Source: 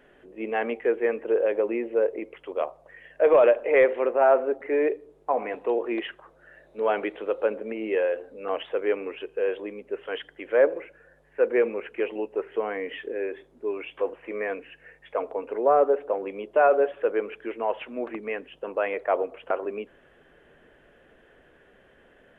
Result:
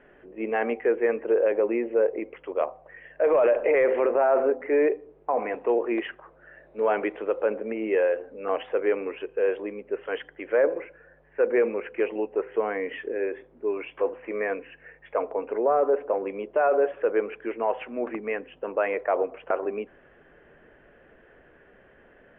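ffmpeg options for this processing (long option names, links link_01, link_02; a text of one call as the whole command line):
ffmpeg -i in.wav -filter_complex "[0:a]asplit=3[link_01][link_02][link_03];[link_01]atrim=end=3.412[link_04];[link_02]atrim=start=3.408:end=4.502,asetpts=PTS-STARTPTS,volume=5dB[link_05];[link_03]atrim=start=4.498[link_06];[link_04][link_05]acrossfade=duration=0.004:curve1=hsin:curve2=hsin[link_07];[link_07][link_06]acrossfade=duration=0.004:curve1=hsin:curve2=hsin,lowpass=frequency=2600:width=0.5412,lowpass=frequency=2600:width=1.3066,bandreject=frequency=253.9:width_type=h:width=4,bandreject=frequency=507.8:width_type=h:width=4,bandreject=frequency=761.7:width_type=h:width=4,bandreject=frequency=1015.6:width_type=h:width=4,alimiter=limit=-16dB:level=0:latency=1:release=27,volume=2dB" out.wav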